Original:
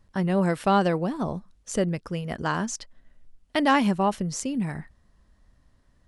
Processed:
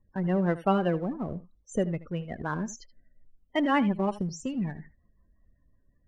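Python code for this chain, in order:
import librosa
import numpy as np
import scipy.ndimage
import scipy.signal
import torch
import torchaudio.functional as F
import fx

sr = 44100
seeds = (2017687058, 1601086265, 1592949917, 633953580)

p1 = fx.rotary(x, sr, hz=5.5)
p2 = fx.spec_topn(p1, sr, count=32)
p3 = fx.backlash(p2, sr, play_db=-25.0)
p4 = p2 + (p3 * 10.0 ** (-7.0 / 20.0))
p5 = p4 + 10.0 ** (-17.0 / 20.0) * np.pad(p4, (int(78 * sr / 1000.0), 0))[:len(p4)]
y = p5 * 10.0 ** (-4.0 / 20.0)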